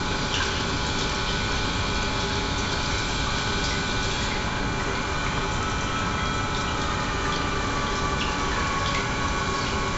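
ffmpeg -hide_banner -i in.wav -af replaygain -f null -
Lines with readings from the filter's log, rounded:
track_gain = +8.8 dB
track_peak = 0.177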